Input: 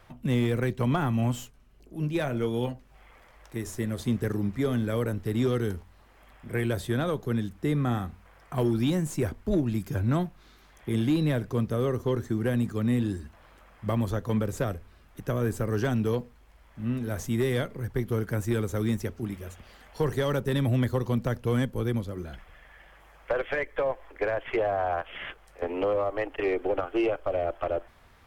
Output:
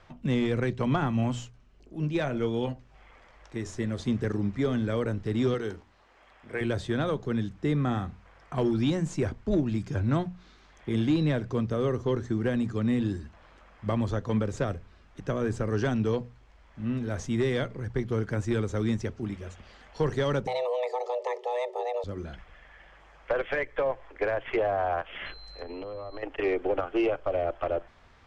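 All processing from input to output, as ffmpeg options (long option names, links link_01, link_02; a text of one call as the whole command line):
ffmpeg -i in.wav -filter_complex "[0:a]asettb=1/sr,asplit=3[link_01][link_02][link_03];[link_01]atrim=end=5.544[link_04];[link_02]atrim=start=5.54:end=6.61,asetpts=PTS-STARTPTS,afade=type=in:duration=0.004:curve=qsin,afade=type=out:start_time=1.066:duration=0.004:curve=qsin,bass=frequency=250:gain=-10,treble=frequency=4000:gain=-1,bandreject=frequency=60:width_type=h:width=6,bandreject=frequency=120:width_type=h:width=6,bandreject=frequency=180:width_type=h:width=6,bandreject=frequency=240:width_type=h:width=6,bandreject=frequency=300:width_type=h:width=6,bandreject=frequency=360:width_type=h:width=6[link_05];[link_03]atrim=start=6.606[link_06];[link_04][link_05]acrossfade=duration=0.004:curve1=hsin:curve2=qsin[link_07];[link_07][link_06]acrossfade=duration=0.004:curve1=qsin:curve2=hsin,asettb=1/sr,asplit=3[link_08][link_09][link_10];[link_08]atrim=end=20.474[link_11];[link_09]atrim=start=20.47:end=22.04,asetpts=PTS-STARTPTS,afade=type=in:duration=0.004:curve=qsin,afade=type=out:start_time=1.566:duration=0.004:curve=qsin,acompressor=threshold=-26dB:ratio=4:attack=3.2:release=140:knee=1:detection=peak,afreqshift=370,asuperstop=centerf=1500:order=12:qfactor=3.6[link_12];[link_10]atrim=start=22.036[link_13];[link_11][link_12]acrossfade=duration=0.004:curve1=hsin:curve2=qsin[link_14];[link_14][link_13]acrossfade=duration=0.004:curve1=qsin:curve2=hsin,asettb=1/sr,asplit=3[link_15][link_16][link_17];[link_15]atrim=end=25.264[link_18];[link_16]atrim=start=25.26:end=26.23,asetpts=PTS-STARTPTS,afade=type=in:duration=0.004:curve=qsin,afade=type=out:start_time=0.966:duration=0.004:curve=qsin,lowshelf=frequency=130:gain=11,aeval=exprs='val(0)+0.00447*sin(2*PI*4100*n/s)':channel_layout=same,acompressor=threshold=-34dB:ratio=16:attack=3.2:release=140:knee=1:detection=peak[link_19];[link_17]atrim=start=26.226[link_20];[link_18][link_19]acrossfade=duration=0.004:curve1=hsin:curve2=qsin[link_21];[link_21][link_20]acrossfade=duration=0.004:curve1=qsin:curve2=hsin,lowpass=frequency=7000:width=0.5412,lowpass=frequency=7000:width=1.3066,bandreject=frequency=60:width_type=h:width=6,bandreject=frequency=120:width_type=h:width=6,bandreject=frequency=180:width_type=h:width=6" out.wav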